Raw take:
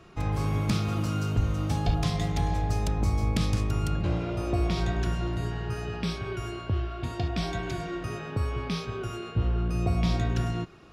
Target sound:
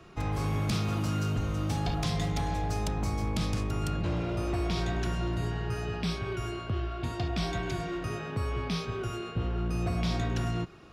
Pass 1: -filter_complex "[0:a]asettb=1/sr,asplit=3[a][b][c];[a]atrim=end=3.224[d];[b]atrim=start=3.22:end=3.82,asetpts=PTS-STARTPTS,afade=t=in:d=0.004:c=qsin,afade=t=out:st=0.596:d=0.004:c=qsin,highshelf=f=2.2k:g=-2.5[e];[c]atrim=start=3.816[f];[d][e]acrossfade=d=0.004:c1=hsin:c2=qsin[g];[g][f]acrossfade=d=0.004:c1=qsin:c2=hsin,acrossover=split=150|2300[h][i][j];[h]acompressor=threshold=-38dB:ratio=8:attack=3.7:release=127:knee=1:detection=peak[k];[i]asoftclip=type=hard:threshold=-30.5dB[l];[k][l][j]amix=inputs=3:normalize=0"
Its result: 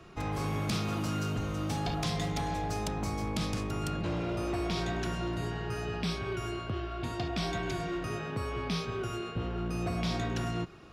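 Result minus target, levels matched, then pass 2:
compressor: peak gain reduction +7.5 dB
-filter_complex "[0:a]asettb=1/sr,asplit=3[a][b][c];[a]atrim=end=3.224[d];[b]atrim=start=3.22:end=3.82,asetpts=PTS-STARTPTS,afade=t=in:d=0.004:c=qsin,afade=t=out:st=0.596:d=0.004:c=qsin,highshelf=f=2.2k:g=-2.5[e];[c]atrim=start=3.816[f];[d][e]acrossfade=d=0.004:c1=hsin:c2=qsin[g];[g][f]acrossfade=d=0.004:c1=qsin:c2=hsin,acrossover=split=150|2300[h][i][j];[h]acompressor=threshold=-29.5dB:ratio=8:attack=3.7:release=127:knee=1:detection=peak[k];[i]asoftclip=type=hard:threshold=-30.5dB[l];[k][l][j]amix=inputs=3:normalize=0"

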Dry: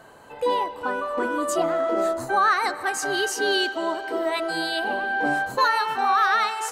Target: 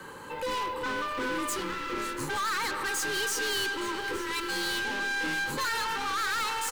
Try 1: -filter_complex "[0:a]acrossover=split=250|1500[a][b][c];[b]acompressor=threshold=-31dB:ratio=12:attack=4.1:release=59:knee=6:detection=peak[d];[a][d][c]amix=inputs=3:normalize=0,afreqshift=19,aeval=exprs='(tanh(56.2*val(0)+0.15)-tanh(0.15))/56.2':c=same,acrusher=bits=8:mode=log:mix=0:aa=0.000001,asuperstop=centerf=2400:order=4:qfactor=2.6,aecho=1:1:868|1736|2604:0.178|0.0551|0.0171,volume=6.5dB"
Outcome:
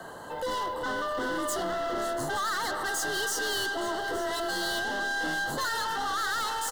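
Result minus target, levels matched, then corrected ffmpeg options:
500 Hz band +3.5 dB
-filter_complex "[0:a]acrossover=split=250|1500[a][b][c];[b]acompressor=threshold=-31dB:ratio=12:attack=4.1:release=59:knee=6:detection=peak[d];[a][d][c]amix=inputs=3:normalize=0,afreqshift=19,aeval=exprs='(tanh(56.2*val(0)+0.15)-tanh(0.15))/56.2':c=same,acrusher=bits=8:mode=log:mix=0:aa=0.000001,asuperstop=centerf=680:order=4:qfactor=2.6,aecho=1:1:868|1736|2604:0.178|0.0551|0.0171,volume=6.5dB"

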